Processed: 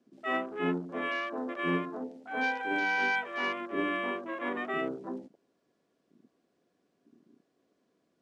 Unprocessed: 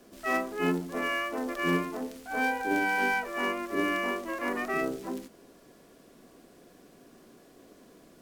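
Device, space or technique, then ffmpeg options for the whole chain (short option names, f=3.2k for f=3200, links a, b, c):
over-cleaned archive recording: -filter_complex "[0:a]asettb=1/sr,asplit=3[a][b][c];[a]atrim=end=2.434[d];[b]atrim=start=2.43:end=3.61,asetpts=PTS-STARTPTS,afade=t=in:d=0.004:c=qsin,afade=t=out:st=1.176:d=0.004:c=qsin,tiltshelf=f=900:g=-4[e];[c]atrim=start=3.606[f];[d][e]acrossfade=d=0.004:c1=hsin:c2=qsin[g];[g][f]acrossfade=d=0.004:c1=qsin:c2=hsin,highpass=100,lowpass=6.3k,afwtdn=0.00891,volume=-2.5dB"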